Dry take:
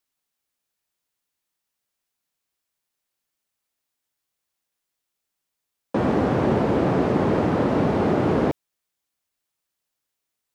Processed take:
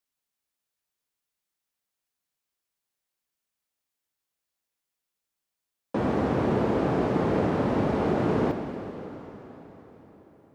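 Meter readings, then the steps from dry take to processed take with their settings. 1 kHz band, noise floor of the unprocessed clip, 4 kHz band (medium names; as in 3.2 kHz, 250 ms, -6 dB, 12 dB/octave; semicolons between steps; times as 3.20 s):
-4.0 dB, -82 dBFS, -4.0 dB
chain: plate-style reverb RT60 4.5 s, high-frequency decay 0.9×, DRR 6 dB; trim -5 dB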